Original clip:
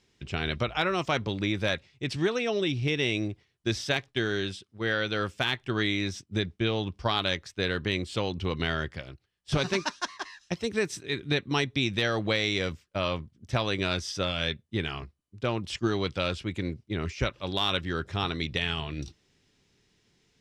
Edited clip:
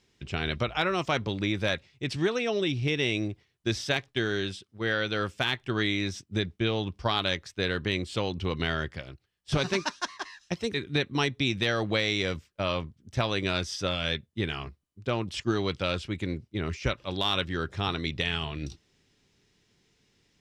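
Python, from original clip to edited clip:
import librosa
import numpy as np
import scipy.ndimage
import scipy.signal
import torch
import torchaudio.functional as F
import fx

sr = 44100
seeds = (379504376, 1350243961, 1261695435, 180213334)

y = fx.edit(x, sr, fx.cut(start_s=10.74, length_s=0.36), tone=tone)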